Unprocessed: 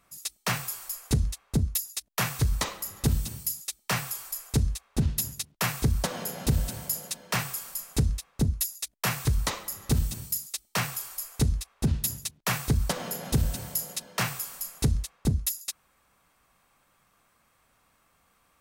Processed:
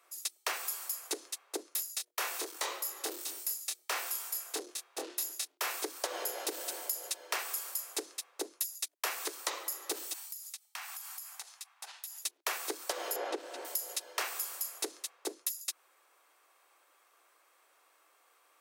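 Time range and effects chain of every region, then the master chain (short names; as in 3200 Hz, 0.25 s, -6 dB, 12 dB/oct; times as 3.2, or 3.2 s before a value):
1.69–5.77 notches 60/120/180/240/300/360/420/480 Hz + tube stage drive 25 dB, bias 0.25 + doubler 25 ms -4 dB
10.13–12.24 Chebyshev high-pass 770 Hz, order 4 + compressor, threshold -40 dBFS
13.16–13.65 tape spacing loss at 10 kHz 20 dB + three-band squash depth 70%
whole clip: steep high-pass 320 Hz 72 dB/oct; compressor, threshold -31 dBFS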